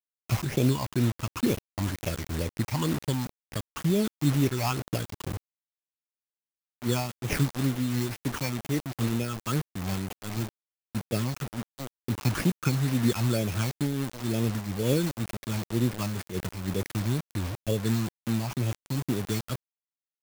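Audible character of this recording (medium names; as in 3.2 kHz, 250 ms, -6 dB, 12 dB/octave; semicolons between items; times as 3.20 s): aliases and images of a low sample rate 3.9 kHz, jitter 0%; phasing stages 8, 2.1 Hz, lowest notch 430–1500 Hz; a quantiser's noise floor 6-bit, dither none; random flutter of the level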